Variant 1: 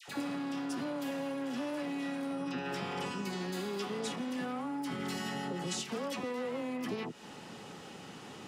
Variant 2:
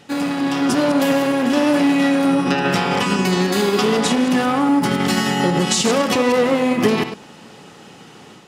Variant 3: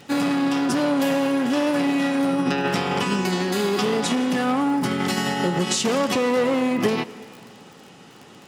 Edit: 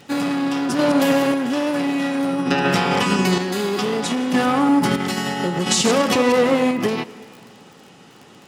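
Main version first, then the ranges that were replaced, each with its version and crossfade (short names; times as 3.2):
3
0.79–1.34 from 2
2.51–3.38 from 2
4.34–4.96 from 2
5.66–6.71 from 2
not used: 1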